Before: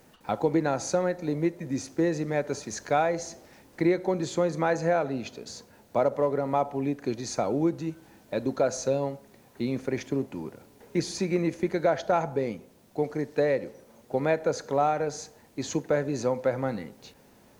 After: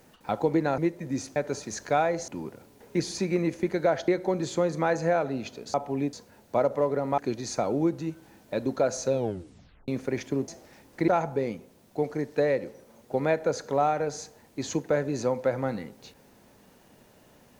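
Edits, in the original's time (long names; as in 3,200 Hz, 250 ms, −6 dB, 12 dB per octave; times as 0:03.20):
0:00.78–0:01.38: remove
0:01.96–0:02.36: remove
0:03.28–0:03.88: swap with 0:10.28–0:12.08
0:06.59–0:06.98: move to 0:05.54
0:08.92: tape stop 0.76 s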